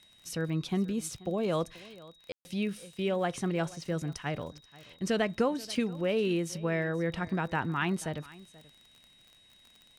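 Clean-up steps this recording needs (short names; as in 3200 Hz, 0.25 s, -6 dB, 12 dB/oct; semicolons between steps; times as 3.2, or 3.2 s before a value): de-click; notch 3800 Hz, Q 30; room tone fill 2.32–2.45; inverse comb 0.483 s -20.5 dB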